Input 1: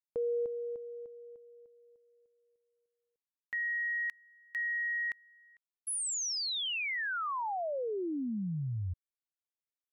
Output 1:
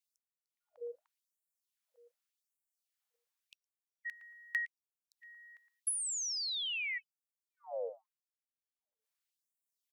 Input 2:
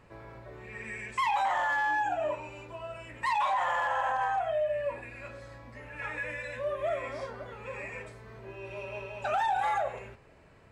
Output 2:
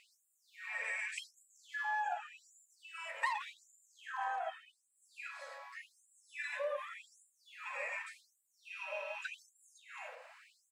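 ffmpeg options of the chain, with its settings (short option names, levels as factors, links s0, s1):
-filter_complex "[0:a]asubboost=boost=3:cutoff=240,acompressor=threshold=0.00631:ratio=10:attack=84:release=218:knee=6:detection=peak,asplit=2[s0][s1];[s1]adelay=114,lowpass=f=1000:p=1,volume=0.447,asplit=2[s2][s3];[s3]adelay=114,lowpass=f=1000:p=1,volume=0.47,asplit=2[s4][s5];[s5]adelay=114,lowpass=f=1000:p=1,volume=0.47,asplit=2[s6][s7];[s7]adelay=114,lowpass=f=1000:p=1,volume=0.47,asplit=2[s8][s9];[s9]adelay=114,lowpass=f=1000:p=1,volume=0.47,asplit=2[s10][s11];[s11]adelay=114,lowpass=f=1000:p=1,volume=0.47[s12];[s0][s2][s4][s6][s8][s10][s12]amix=inputs=7:normalize=0,afftfilt=real='re*gte(b*sr/1024,450*pow(7100/450,0.5+0.5*sin(2*PI*0.86*pts/sr)))':imag='im*gte(b*sr/1024,450*pow(7100/450,0.5+0.5*sin(2*PI*0.86*pts/sr)))':win_size=1024:overlap=0.75,volume=2.11"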